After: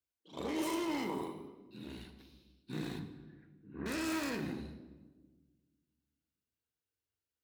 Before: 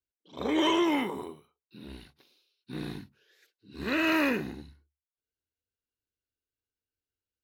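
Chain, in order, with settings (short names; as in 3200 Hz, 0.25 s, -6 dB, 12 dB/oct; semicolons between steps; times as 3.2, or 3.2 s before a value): tracing distortion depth 0.28 ms; HPF 43 Hz; limiter -28 dBFS, peak gain reduction 11.5 dB; 2.99–3.86 inverse Chebyshev low-pass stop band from 5700 Hz, stop band 60 dB; reverb RT60 1.3 s, pre-delay 6 ms, DRR 6.5 dB; gain -2 dB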